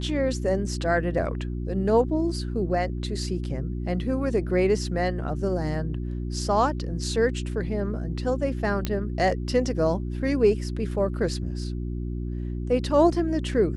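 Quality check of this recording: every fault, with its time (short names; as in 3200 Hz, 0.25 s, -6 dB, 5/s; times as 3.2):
hum 60 Hz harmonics 6 -30 dBFS
8.85 pop -12 dBFS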